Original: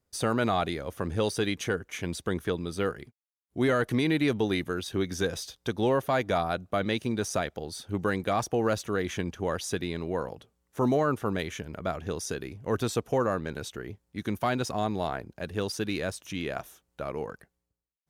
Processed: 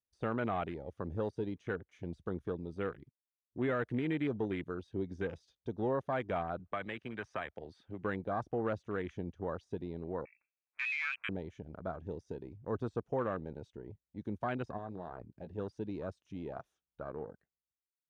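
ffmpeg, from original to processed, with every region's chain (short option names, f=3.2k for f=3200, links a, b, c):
-filter_complex "[0:a]asettb=1/sr,asplit=3[a][b][c];[a]atrim=end=6.594[d];[b]atrim=start=6.59:end=8.04,asetpts=PTS-STARTPTS,afade=t=in:d=0.004:c=qsin,afade=t=out:st=1.446:d=0.004:c=qsin,equalizer=f=1.6k:t=o:w=2.6:g=10.5,acrossover=split=110|900|3700[e][f][g][h];[e]acompressor=threshold=-51dB:ratio=3[i];[f]acompressor=threshold=-35dB:ratio=3[j];[g]acompressor=threshold=-32dB:ratio=3[k];[h]acompressor=threshold=-45dB:ratio=3[l];[i][j][k][l]amix=inputs=4:normalize=0,bandreject=f=1.4k:w=16[m];[c]atrim=start=8.036[n];[d][m]acrossfade=d=0.004:c1=hsin:c2=qsin[o];[o][n]acrossfade=d=0.004:c1=qsin:c2=hsin,asettb=1/sr,asplit=3[p][q][r];[p]atrim=end=10.254[s];[q]atrim=start=10.25:end=11.29,asetpts=PTS-STARTPTS,afade=t=in:d=0.004:c=qsin,afade=t=out:st=1.036:d=0.004:c=qsin,highpass=190,lowpass=f=2.4k:t=q:w=0.5098,lowpass=f=2.4k:t=q:w=0.6013,lowpass=f=2.4k:t=q:w=0.9,lowpass=f=2.4k:t=q:w=2.563,afreqshift=-2800[t];[r]atrim=start=11.286[u];[s][t]acrossfade=d=0.004:c1=hsin:c2=qsin[v];[v][u]acrossfade=d=0.004:c1=qsin:c2=hsin,asettb=1/sr,asplit=3[w][x][y];[w]atrim=end=14.774[z];[x]atrim=start=14.77:end=15.58,asetpts=PTS-STARTPTS,afade=t=in:d=0.004:c=qsin,afade=t=out:st=0.806:d=0.004:c=qsin,acompressor=threshold=-30dB:ratio=6:attack=3.2:release=140:knee=1:detection=peak,asplit=2[aa][ab];[ab]adelay=17,volume=-9.5dB[ac];[aa][ac]amix=inputs=2:normalize=0,atrim=end_sample=35721[ad];[y]atrim=start=15.576[ae];[z][ad]acrossfade=d=0.004:c1=hsin:c2=qsin[af];[af][ae]acrossfade=d=0.004:c1=qsin:c2=hsin,deesser=0.9,lowpass=5.6k,afwtdn=0.0178,volume=-8dB"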